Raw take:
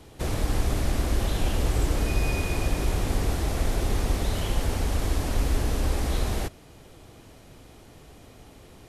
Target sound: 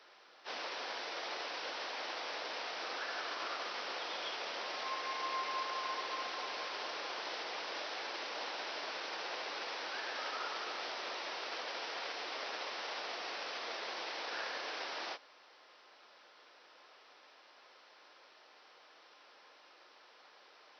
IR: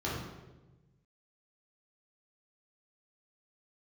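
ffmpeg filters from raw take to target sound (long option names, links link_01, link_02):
-af "aeval=exprs='0.266*(cos(1*acos(clip(val(0)/0.266,-1,1)))-cos(1*PI/2))+0.00596*(cos(4*acos(clip(val(0)/0.266,-1,1)))-cos(4*PI/2))':channel_layout=same,asetrate=18846,aresample=44100,highpass=frequency=510:width=0.5412,highpass=frequency=510:width=1.3066,volume=-2.5dB"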